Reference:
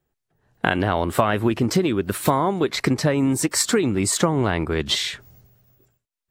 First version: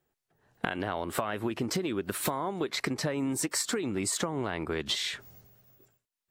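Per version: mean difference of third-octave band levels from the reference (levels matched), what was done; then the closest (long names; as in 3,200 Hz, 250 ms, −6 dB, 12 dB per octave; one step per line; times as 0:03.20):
3.0 dB: low-shelf EQ 140 Hz −10.5 dB
downward compressor 6 to 1, threshold −28 dBFS, peak gain reduction 14 dB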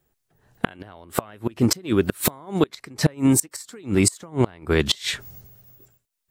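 10.0 dB: high-shelf EQ 5,600 Hz +7 dB
gate with flip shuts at −10 dBFS, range −27 dB
level +4 dB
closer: first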